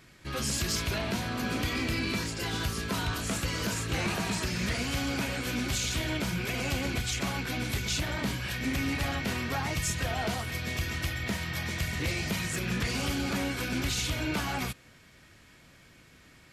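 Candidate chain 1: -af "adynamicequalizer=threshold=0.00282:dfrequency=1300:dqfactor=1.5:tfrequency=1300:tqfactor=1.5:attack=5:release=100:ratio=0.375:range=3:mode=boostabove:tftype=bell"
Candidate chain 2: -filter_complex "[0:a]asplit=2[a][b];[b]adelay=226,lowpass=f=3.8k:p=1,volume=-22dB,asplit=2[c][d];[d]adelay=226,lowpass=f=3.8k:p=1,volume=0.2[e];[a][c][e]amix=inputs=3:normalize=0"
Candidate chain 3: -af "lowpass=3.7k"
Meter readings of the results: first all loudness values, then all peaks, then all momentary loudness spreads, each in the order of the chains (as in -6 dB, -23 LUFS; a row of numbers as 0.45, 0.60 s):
-30.0, -31.0, -32.0 LUFS; -18.5, -21.5, -22.0 dBFS; 3, 3, 2 LU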